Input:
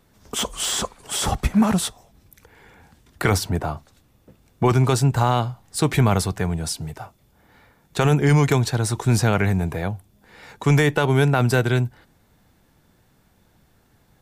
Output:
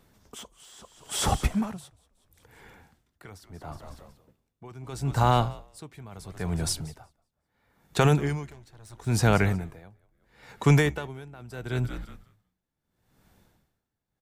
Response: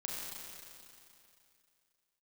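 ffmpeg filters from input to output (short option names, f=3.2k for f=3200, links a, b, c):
-filter_complex "[0:a]asettb=1/sr,asplit=3[a][b][c];[a]atrim=end=8.504[d];[b]atrim=start=8.5:end=9.07,asetpts=PTS-STARTPTS,afade=t=in:d=0.004:c=qsin,afade=t=out:st=0.566:d=0.004:c=qsin,aeval=exprs='(tanh(8.91*val(0)+0.55)-tanh(0.55))/8.91':c=same[e];[c]atrim=start=9.066[f];[d][e]acrossfade=d=0.004:c1=hsin:c2=qsin[g];[g][f]acrossfade=d=0.004:c1=qsin:c2=hsin,asplit=5[h][i][j][k][l];[i]adelay=184,afreqshift=-77,volume=-15.5dB[m];[j]adelay=368,afreqshift=-154,volume=-23.2dB[n];[k]adelay=552,afreqshift=-231,volume=-31dB[o];[l]adelay=736,afreqshift=-308,volume=-38.7dB[p];[h][m][n][o][p]amix=inputs=5:normalize=0,aeval=exprs='val(0)*pow(10,-26*(0.5-0.5*cos(2*PI*0.75*n/s))/20)':c=same,volume=-1.5dB"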